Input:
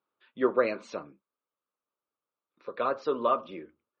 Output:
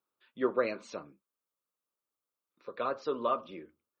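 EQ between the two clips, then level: bass shelf 190 Hz +4 dB; treble shelf 5.3 kHz +9.5 dB; -5.0 dB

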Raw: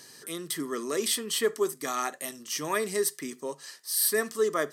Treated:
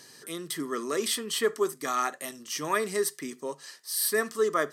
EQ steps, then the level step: treble shelf 7.6 kHz -4 dB; dynamic bell 1.3 kHz, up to +4 dB, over -44 dBFS, Q 1.9; 0.0 dB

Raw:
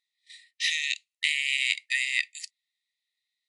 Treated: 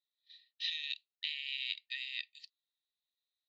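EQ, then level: four-pole ladder low-pass 4.6 kHz, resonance 55%; distance through air 110 m; peaking EQ 2.1 kHz -14 dB 0.27 oct; -2.0 dB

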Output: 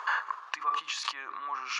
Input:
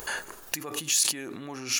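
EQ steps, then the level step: Savitzky-Golay filter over 9 samples; resonant high-pass 1.1 kHz, resonance Q 8.8; distance through air 240 m; 0.0 dB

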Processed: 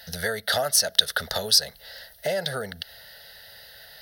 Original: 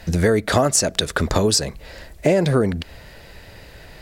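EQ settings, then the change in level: tilt EQ +4 dB/octave; static phaser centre 1.6 kHz, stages 8; -4.0 dB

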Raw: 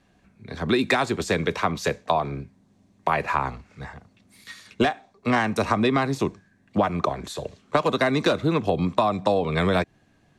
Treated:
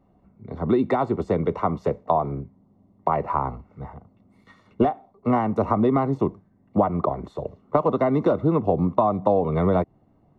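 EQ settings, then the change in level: Savitzky-Golay filter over 65 samples; +2.0 dB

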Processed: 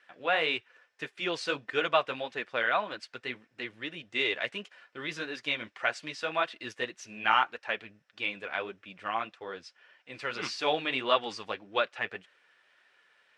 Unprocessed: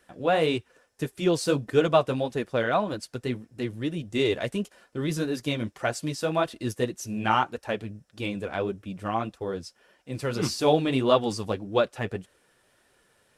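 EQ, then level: band-pass filter 2.2 kHz, Q 1.2; distance through air 63 m; +5.5 dB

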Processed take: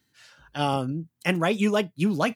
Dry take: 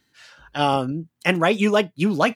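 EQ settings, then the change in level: high-pass 85 Hz; bass shelf 150 Hz +11.5 dB; treble shelf 7 kHz +8 dB; -6.5 dB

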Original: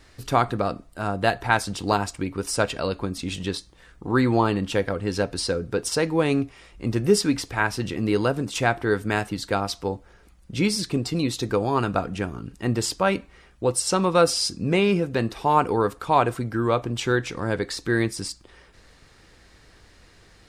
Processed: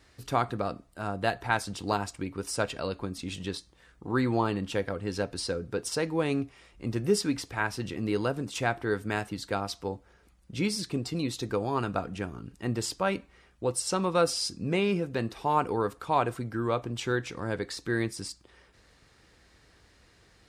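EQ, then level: high-pass 42 Hz; -6.5 dB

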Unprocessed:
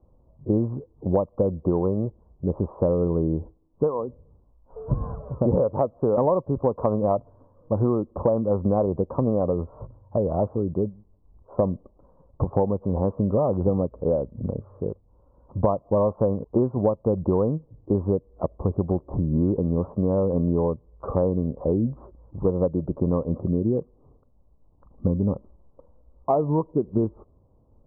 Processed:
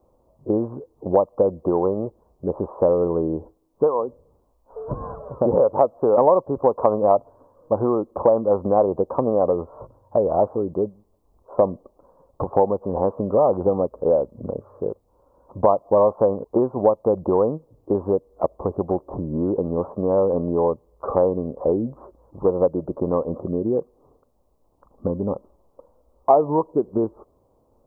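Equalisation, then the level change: dynamic bell 800 Hz, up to +3 dB, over -40 dBFS, Q 3.4; tone controls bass -14 dB, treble +6 dB; +6.0 dB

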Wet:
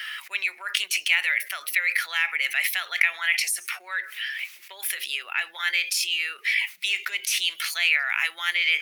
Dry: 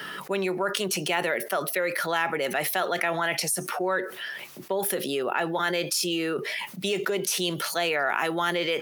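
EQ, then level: resonant high-pass 2.2 kHz, resonance Q 3.7; 0.0 dB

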